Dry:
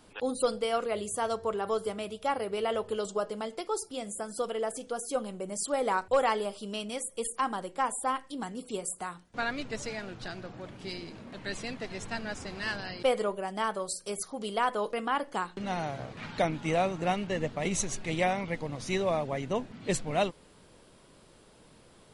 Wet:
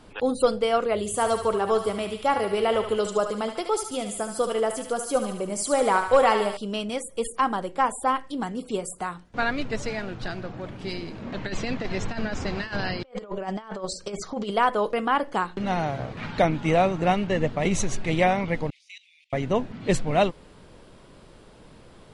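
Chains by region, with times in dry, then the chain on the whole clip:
0:00.99–0:06.57: high-shelf EQ 8,000 Hz +9 dB + feedback echo with a high-pass in the loop 73 ms, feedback 64%, high-pass 740 Hz, level −6.5 dB
0:11.22–0:14.51: Butterworth low-pass 7,600 Hz + compressor whose output falls as the input rises −37 dBFS, ratio −0.5
0:18.70–0:19.33: Butterworth high-pass 2,200 Hz 72 dB per octave + spectral tilt −2.5 dB per octave + output level in coarse steps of 16 dB
whole clip: low-pass filter 3,600 Hz 6 dB per octave; low-shelf EQ 81 Hz +6 dB; level +7 dB

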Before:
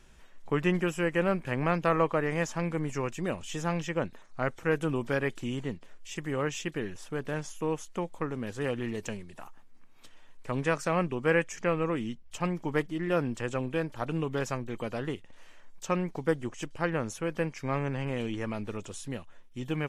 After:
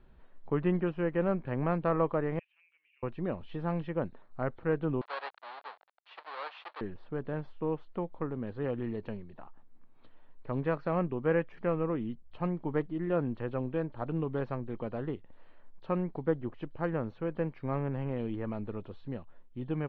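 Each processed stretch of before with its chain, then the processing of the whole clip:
0:02.39–0:03.03: flat-topped band-pass 2,600 Hz, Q 4.7 + downward compressor 2 to 1, threshold −52 dBFS
0:05.01–0:06.81: each half-wave held at its own peak + high-pass filter 790 Hz 24 dB per octave
whole clip: Chebyshev low-pass filter 4,300 Hz, order 6; parametric band 3,200 Hz −14 dB 2.2 octaves

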